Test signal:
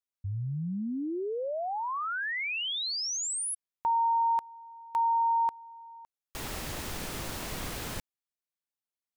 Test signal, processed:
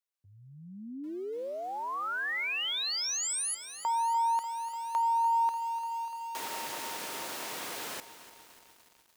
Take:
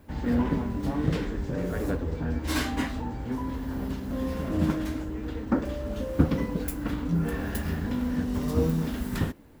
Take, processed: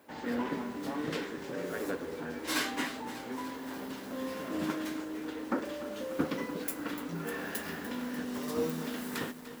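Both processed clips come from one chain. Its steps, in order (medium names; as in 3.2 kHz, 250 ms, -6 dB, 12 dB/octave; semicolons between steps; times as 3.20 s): dynamic bell 700 Hz, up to -4 dB, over -41 dBFS, Q 1.2; high-pass 390 Hz 12 dB/octave; bit-crushed delay 295 ms, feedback 80%, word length 8-bit, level -13.5 dB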